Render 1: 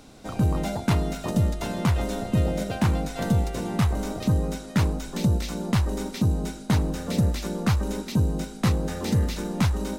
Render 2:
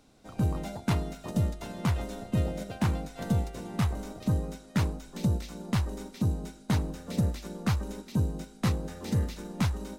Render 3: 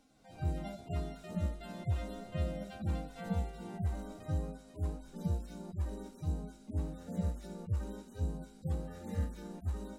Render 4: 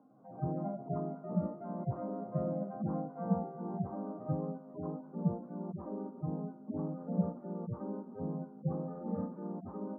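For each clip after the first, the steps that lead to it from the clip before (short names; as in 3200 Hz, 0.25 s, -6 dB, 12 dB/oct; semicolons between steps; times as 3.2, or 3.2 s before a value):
upward expander 1.5:1, over -34 dBFS; gain -4 dB
median-filter separation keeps harmonic; gain -4 dB
Chebyshev band-pass 130–1200 Hz, order 4; gain +6 dB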